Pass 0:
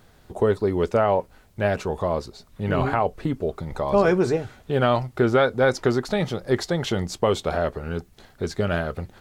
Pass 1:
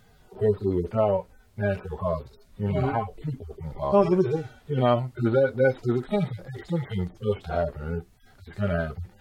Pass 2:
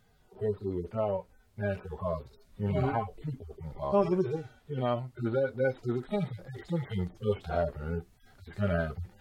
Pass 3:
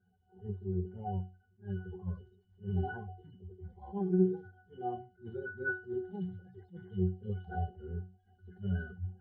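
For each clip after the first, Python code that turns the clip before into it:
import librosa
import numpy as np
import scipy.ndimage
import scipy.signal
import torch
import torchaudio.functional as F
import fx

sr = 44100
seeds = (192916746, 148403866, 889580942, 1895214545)

y1 = fx.hpss_only(x, sr, part='harmonic')
y2 = fx.rider(y1, sr, range_db=4, speed_s=2.0)
y2 = y2 * librosa.db_to_amplitude(-6.5)
y3 = fx.spec_quant(y2, sr, step_db=30)
y3 = fx.octave_resonator(y3, sr, note='F#', decay_s=0.32)
y3 = fx.attack_slew(y3, sr, db_per_s=250.0)
y3 = y3 * librosa.db_to_amplitude(7.0)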